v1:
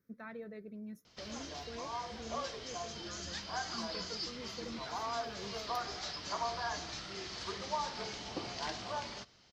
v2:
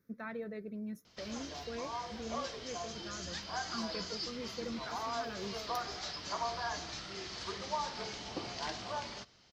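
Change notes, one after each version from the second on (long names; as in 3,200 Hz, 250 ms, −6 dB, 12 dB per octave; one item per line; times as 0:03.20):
speech +4.5 dB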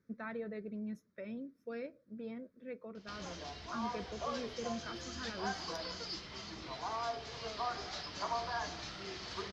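background: entry +1.90 s
master: add high-frequency loss of the air 68 metres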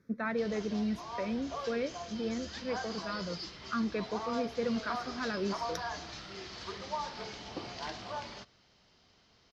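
speech +9.0 dB
background: entry −2.70 s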